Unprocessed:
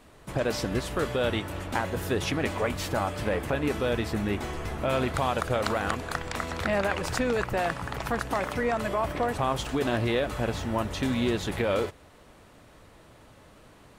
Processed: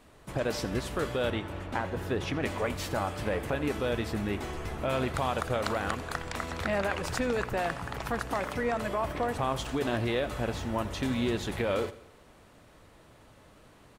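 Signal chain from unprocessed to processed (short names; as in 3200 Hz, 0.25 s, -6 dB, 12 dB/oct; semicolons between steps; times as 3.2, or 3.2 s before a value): 1.3–2.43 high shelf 5100 Hz -11.5 dB; feedback echo 84 ms, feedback 49%, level -17.5 dB; gain -3 dB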